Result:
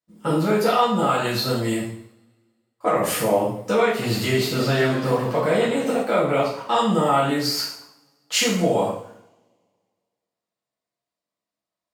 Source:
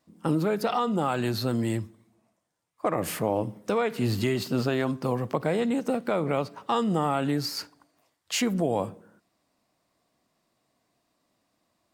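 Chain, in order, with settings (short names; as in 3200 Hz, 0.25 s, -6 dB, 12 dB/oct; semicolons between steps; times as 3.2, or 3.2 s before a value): gate -57 dBFS, range -22 dB; low shelf 330 Hz -6.5 dB; two-slope reverb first 0.58 s, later 1.9 s, from -28 dB, DRR -8 dB; 3.89–6.03 warbling echo 0.128 s, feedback 69%, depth 164 cents, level -13 dB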